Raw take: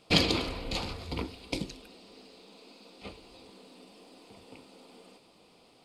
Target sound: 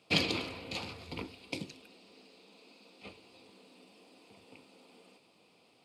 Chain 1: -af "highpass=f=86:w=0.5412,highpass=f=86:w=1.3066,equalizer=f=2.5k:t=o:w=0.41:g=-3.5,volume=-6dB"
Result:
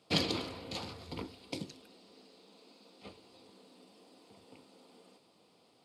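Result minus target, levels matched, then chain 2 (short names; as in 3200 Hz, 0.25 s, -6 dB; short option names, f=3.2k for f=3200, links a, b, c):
2000 Hz band -5.0 dB
-af "highpass=f=86:w=0.5412,highpass=f=86:w=1.3066,equalizer=f=2.5k:t=o:w=0.41:g=5.5,volume=-6dB"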